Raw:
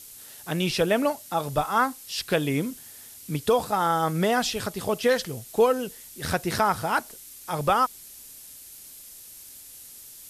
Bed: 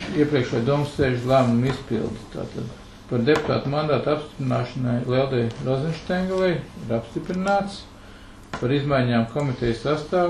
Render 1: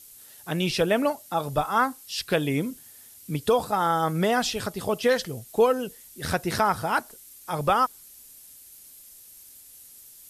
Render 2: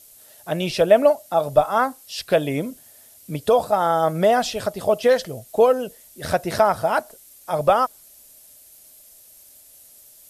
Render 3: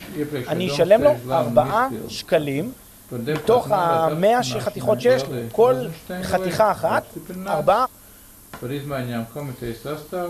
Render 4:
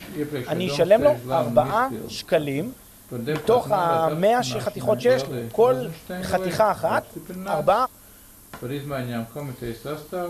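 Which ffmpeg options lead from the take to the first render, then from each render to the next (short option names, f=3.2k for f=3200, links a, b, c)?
-af "afftdn=nr=6:nf=-46"
-af "equalizer=f=620:w=2.7:g=13"
-filter_complex "[1:a]volume=-6.5dB[a];[0:a][a]amix=inputs=2:normalize=0"
-af "volume=-2dB"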